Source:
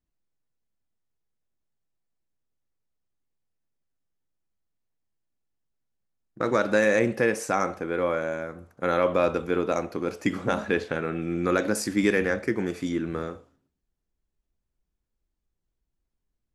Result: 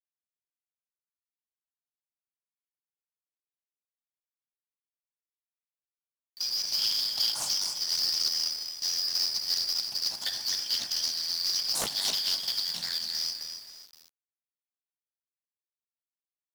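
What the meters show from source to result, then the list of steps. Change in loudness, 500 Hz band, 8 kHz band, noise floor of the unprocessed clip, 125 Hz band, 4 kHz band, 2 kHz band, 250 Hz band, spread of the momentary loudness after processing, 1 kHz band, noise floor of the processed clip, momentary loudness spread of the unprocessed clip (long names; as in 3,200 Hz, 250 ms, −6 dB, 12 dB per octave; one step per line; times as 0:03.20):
−1.0 dB, −27.5 dB, +8.0 dB, −81 dBFS, below −20 dB, +18.0 dB, −15.5 dB, below −25 dB, 5 LU, −17.0 dB, below −85 dBFS, 9 LU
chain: band-splitting scrambler in four parts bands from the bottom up 4321
high-pass filter 120 Hz 24 dB per octave
parametric band 2,900 Hz −6.5 dB 1.3 octaves
comb filter 1.2 ms, depth 77%
downward compressor 16 to 1, threshold −27 dBFS, peak gain reduction 11 dB
gain into a clipping stage and back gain 28.5 dB
echo with shifted repeats 261 ms, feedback 33%, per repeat +36 Hz, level −8 dB
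log-companded quantiser 4 bits
highs frequency-modulated by the lows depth 0.98 ms
level +4 dB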